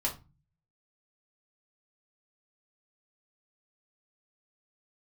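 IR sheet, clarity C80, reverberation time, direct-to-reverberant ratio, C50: 19.0 dB, 0.25 s, -3.5 dB, 11.5 dB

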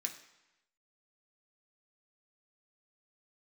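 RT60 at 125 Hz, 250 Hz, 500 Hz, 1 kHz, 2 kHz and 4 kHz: 0.95, 0.90, 0.90, 1.0, 1.0, 0.95 s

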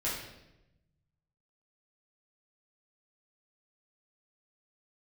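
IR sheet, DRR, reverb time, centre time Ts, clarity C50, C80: -8.0 dB, 0.95 s, 55 ms, 2.0 dB, 5.5 dB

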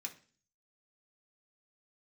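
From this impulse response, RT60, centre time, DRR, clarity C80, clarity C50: 0.40 s, 9 ms, 0.5 dB, 19.0 dB, 13.5 dB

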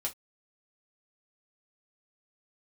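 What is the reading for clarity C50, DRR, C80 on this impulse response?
18.0 dB, -2.5 dB, 37.0 dB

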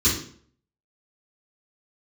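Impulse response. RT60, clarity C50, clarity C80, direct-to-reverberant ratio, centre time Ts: 0.55 s, 4.5 dB, 9.0 dB, -10.5 dB, 35 ms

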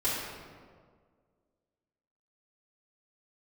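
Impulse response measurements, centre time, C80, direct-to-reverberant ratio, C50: 99 ms, 1.5 dB, -8.5 dB, -1.0 dB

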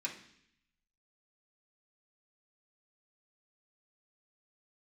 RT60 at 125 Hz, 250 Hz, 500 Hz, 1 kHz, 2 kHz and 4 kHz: 1.1, 0.90, 0.70, 0.65, 0.85, 0.85 s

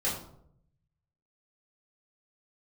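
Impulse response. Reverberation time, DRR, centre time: 0.70 s, -9.0 dB, 37 ms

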